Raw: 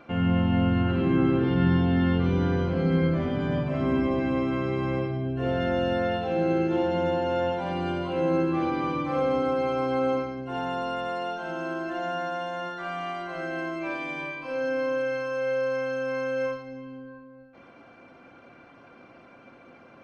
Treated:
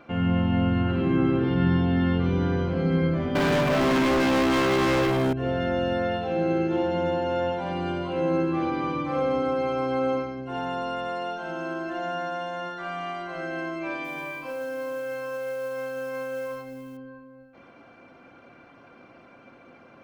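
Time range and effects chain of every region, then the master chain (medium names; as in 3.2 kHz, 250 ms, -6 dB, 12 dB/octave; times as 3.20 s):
3.35–5.33 s: peaking EQ 72 Hz -14.5 dB 2.9 oct + waveshaping leveller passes 5
14.04–16.97 s: dynamic bell 850 Hz, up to +4 dB, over -38 dBFS, Q 0.71 + compression 4:1, threshold -30 dBFS + modulation noise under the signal 24 dB
whole clip: none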